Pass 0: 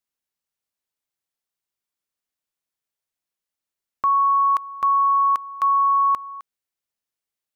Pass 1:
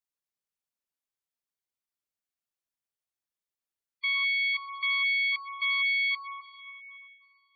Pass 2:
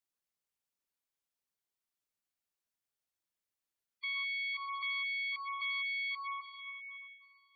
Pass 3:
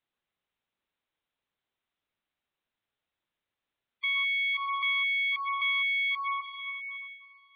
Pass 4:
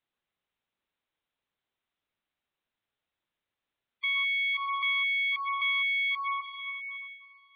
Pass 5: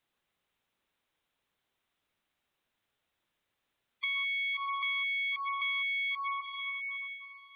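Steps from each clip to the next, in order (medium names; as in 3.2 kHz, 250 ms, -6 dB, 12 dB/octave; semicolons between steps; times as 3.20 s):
self-modulated delay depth 0.29 ms; plate-style reverb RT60 2.7 s, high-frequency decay 0.9×, pre-delay 80 ms, DRR 9 dB; spectral gate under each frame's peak -15 dB strong; trim -7.5 dB
peak limiter -31.5 dBFS, peak gain reduction 11 dB
steep low-pass 3.9 kHz 96 dB/octave; trim +8.5 dB
no audible change
compression 2:1, threshold -45 dBFS, peak gain reduction 10.5 dB; trim +5.5 dB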